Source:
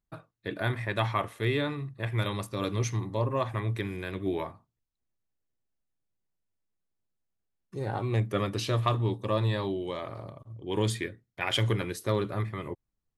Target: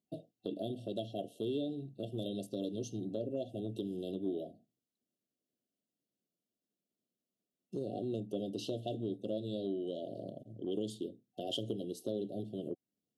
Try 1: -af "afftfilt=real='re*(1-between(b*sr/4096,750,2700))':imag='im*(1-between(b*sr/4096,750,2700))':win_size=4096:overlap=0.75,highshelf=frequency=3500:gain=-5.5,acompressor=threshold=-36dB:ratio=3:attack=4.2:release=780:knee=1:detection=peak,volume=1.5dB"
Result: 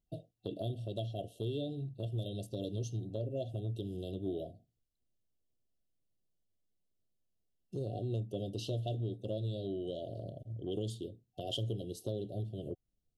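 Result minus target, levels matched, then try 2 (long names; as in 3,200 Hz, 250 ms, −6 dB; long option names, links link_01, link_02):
250 Hz band −3.5 dB
-af "afftfilt=real='re*(1-between(b*sr/4096,750,2700))':imag='im*(1-between(b*sr/4096,750,2700))':win_size=4096:overlap=0.75,highpass=frequency=230:width_type=q:width=1.9,highshelf=frequency=3500:gain=-5.5,acompressor=threshold=-36dB:ratio=3:attack=4.2:release=780:knee=1:detection=peak,volume=1.5dB"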